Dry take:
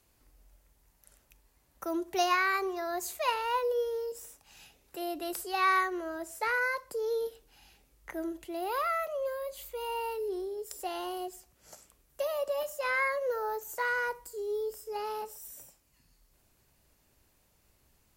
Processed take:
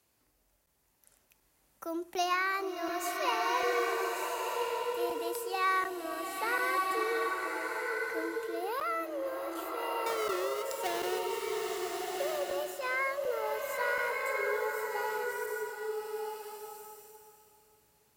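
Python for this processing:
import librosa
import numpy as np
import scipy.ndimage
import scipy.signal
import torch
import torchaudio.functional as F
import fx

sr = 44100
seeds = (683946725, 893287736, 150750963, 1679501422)

y = fx.halfwave_hold(x, sr, at=(10.06, 11.19))
y = scipy.signal.sosfilt(scipy.signal.butter(2, 64.0, 'highpass', fs=sr, output='sos'), y)
y = fx.low_shelf(y, sr, hz=120.0, db=-8.0)
y = fx.buffer_crackle(y, sr, first_s=0.66, period_s=0.74, block=512, kind='zero')
y = fx.rev_bloom(y, sr, seeds[0], attack_ms=1380, drr_db=-0.5)
y = y * librosa.db_to_amplitude(-3.0)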